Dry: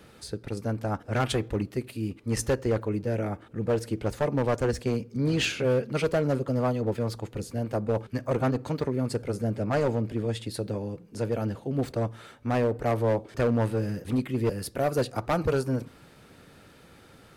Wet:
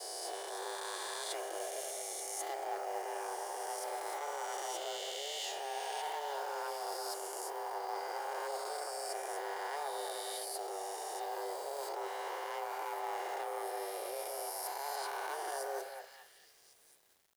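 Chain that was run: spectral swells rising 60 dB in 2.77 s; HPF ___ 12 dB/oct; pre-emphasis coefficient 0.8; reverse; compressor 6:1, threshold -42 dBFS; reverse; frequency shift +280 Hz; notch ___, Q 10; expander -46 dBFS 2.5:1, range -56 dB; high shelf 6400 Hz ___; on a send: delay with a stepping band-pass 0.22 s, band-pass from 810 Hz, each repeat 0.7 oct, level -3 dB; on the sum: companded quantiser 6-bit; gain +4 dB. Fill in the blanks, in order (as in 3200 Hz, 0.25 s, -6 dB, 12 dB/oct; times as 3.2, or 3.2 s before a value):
64 Hz, 2600 Hz, -3 dB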